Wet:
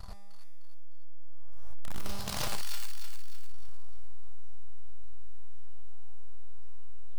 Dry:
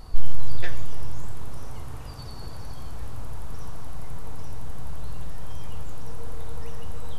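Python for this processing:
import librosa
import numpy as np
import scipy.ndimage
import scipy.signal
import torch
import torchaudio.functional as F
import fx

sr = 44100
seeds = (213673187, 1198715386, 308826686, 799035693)

y = scipy.signal.sosfilt(scipy.signal.cheby1(2, 1.0, [100.0, 580.0], 'bandstop', fs=sr, output='sos'), x)
y = fx.leveller(y, sr, passes=3)
y = fx.over_compress(y, sr, threshold_db=-21.0, ratio=-1.0)
y = (np.mod(10.0 ** (10.0 / 20.0) * y + 1.0, 2.0) - 1.0) / 10.0 ** (10.0 / 20.0)
y = fx.comb_fb(y, sr, f0_hz=200.0, decay_s=1.3, harmonics='all', damping=0.0, mix_pct=90)
y = np.clip(y, -10.0 ** (-20.0 / 20.0), 10.0 ** (-20.0 / 20.0))
y = fx.echo_wet_highpass(y, sr, ms=304, feedback_pct=42, hz=1500.0, wet_db=-5)
y = fx.doppler_dist(y, sr, depth_ms=0.43)
y = F.gain(torch.from_numpy(y), -1.5).numpy()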